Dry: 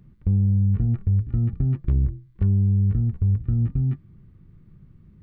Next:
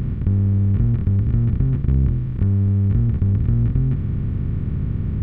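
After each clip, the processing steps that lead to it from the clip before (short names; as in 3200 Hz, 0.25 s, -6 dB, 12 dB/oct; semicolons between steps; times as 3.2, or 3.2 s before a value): per-bin compression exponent 0.2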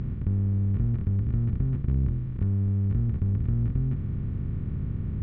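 air absorption 110 m; gain -7.5 dB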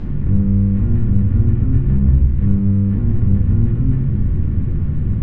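shoebox room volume 180 m³, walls mixed, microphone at 2.3 m; gain +1.5 dB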